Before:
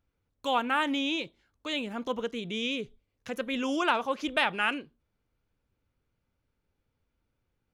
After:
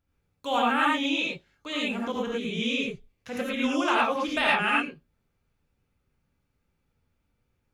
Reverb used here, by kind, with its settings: non-linear reverb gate 0.13 s rising, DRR -5 dB; gain -2 dB

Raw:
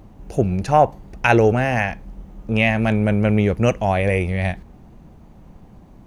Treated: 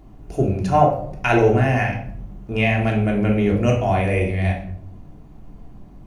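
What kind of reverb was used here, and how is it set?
shoebox room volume 970 m³, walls furnished, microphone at 3.2 m; gain -5.5 dB

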